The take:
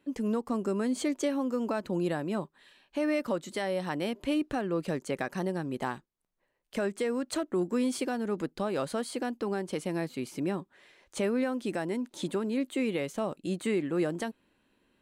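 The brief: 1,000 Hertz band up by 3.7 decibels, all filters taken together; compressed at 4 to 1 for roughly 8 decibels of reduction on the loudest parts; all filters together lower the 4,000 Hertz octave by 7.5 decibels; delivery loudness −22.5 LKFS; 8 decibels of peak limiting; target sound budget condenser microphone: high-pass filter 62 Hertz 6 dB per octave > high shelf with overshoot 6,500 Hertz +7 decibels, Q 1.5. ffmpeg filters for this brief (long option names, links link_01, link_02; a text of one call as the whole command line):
ffmpeg -i in.wav -af "equalizer=frequency=1000:width_type=o:gain=5.5,equalizer=frequency=4000:width_type=o:gain=-9,acompressor=threshold=-34dB:ratio=4,alimiter=level_in=7dB:limit=-24dB:level=0:latency=1,volume=-7dB,highpass=frequency=62:poles=1,highshelf=frequency=6500:width_type=q:width=1.5:gain=7,volume=18dB" out.wav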